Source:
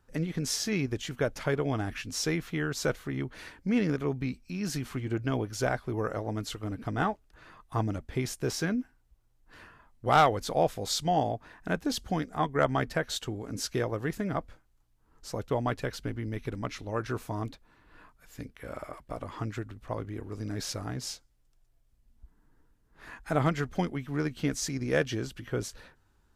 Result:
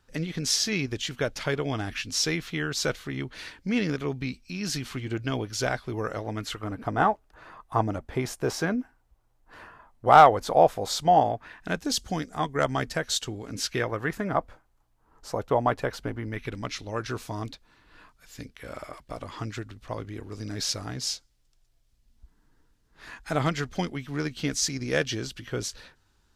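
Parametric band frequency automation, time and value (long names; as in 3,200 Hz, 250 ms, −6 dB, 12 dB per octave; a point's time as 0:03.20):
parametric band +9 dB 1.9 octaves
0:06.14 4,000 Hz
0:06.82 820 Hz
0:11.14 820 Hz
0:11.85 6,500 Hz
0:13.12 6,500 Hz
0:14.39 830 Hz
0:16.16 830 Hz
0:16.63 4,600 Hz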